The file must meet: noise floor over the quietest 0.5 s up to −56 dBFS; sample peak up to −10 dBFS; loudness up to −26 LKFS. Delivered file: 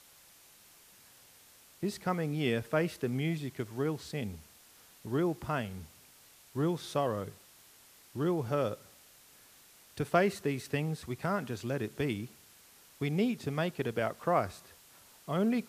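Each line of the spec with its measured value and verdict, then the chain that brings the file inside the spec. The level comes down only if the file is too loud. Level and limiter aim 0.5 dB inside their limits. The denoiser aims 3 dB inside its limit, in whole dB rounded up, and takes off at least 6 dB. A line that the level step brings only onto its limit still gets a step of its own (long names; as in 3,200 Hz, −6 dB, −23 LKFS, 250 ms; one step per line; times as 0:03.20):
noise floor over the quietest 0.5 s −59 dBFS: in spec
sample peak −12.0 dBFS: in spec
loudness −33.5 LKFS: in spec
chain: no processing needed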